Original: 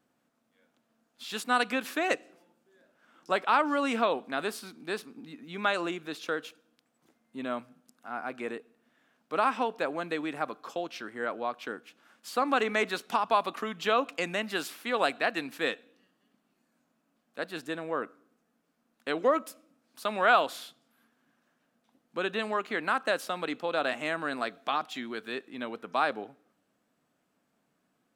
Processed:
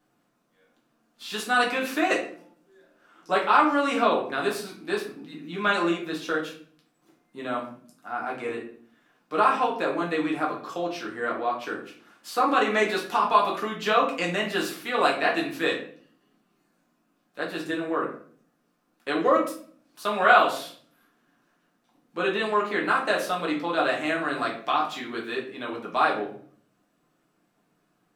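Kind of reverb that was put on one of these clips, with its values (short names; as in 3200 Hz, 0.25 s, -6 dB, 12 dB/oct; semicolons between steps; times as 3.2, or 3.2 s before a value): shoebox room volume 49 m³, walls mixed, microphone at 0.92 m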